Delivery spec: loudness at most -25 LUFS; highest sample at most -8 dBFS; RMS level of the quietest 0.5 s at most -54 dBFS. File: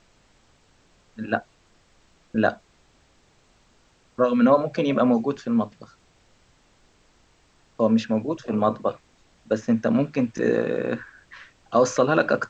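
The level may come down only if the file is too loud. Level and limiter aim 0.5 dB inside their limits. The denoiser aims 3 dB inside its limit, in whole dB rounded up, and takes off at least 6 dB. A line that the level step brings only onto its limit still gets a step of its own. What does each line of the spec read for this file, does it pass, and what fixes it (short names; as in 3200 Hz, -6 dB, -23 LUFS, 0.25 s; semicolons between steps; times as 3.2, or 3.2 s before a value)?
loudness -23.0 LUFS: fail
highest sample -6.0 dBFS: fail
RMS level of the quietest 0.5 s -60 dBFS: OK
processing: gain -2.5 dB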